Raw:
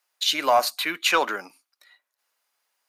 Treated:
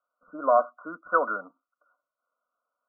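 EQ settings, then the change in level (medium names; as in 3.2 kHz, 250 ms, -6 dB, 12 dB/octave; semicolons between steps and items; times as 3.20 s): brick-wall FIR low-pass 1.5 kHz; bass shelf 160 Hz -8 dB; static phaser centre 570 Hz, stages 8; +2.0 dB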